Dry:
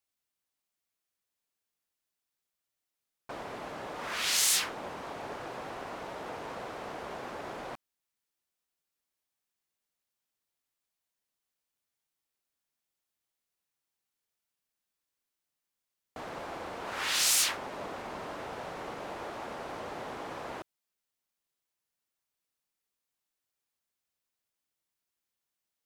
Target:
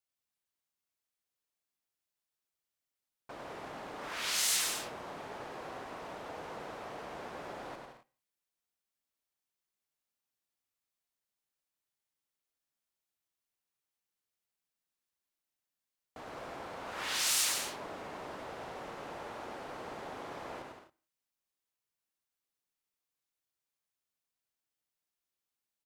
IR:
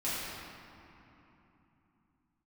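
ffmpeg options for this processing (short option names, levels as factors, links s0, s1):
-filter_complex "[0:a]aecho=1:1:100|170|219|253.3|277.3:0.631|0.398|0.251|0.158|0.1,asplit=2[s0][s1];[1:a]atrim=start_sample=2205,afade=t=out:st=0.24:d=0.01,atrim=end_sample=11025[s2];[s1][s2]afir=irnorm=-1:irlink=0,volume=0.0376[s3];[s0][s3]amix=inputs=2:normalize=0,volume=0.501"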